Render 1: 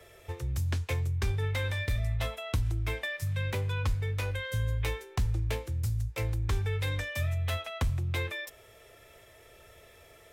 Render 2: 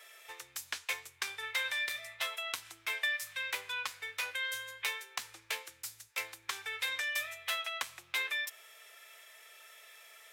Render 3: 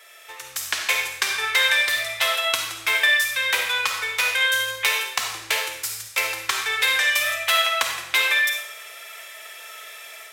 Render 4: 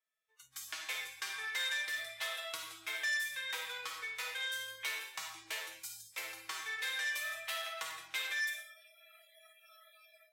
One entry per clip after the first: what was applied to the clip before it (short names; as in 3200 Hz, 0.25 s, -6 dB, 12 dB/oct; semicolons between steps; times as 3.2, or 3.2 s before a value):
HPF 1300 Hz 12 dB/oct; gain +4 dB
AGC gain up to 7.5 dB; on a send at -1.5 dB: reverb RT60 0.80 s, pre-delay 10 ms; on the sum: gain +6 dB
spectral noise reduction 28 dB; resonator 160 Hz, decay 0.16 s, harmonics all, mix 90%; core saturation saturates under 3900 Hz; gain -8.5 dB